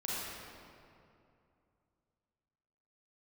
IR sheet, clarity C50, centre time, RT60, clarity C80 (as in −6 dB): −5.0 dB, 169 ms, 2.6 s, −2.5 dB